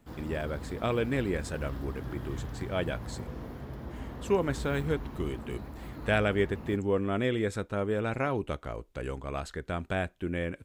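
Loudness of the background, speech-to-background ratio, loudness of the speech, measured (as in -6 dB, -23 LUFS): -41.5 LUFS, 9.0 dB, -32.5 LUFS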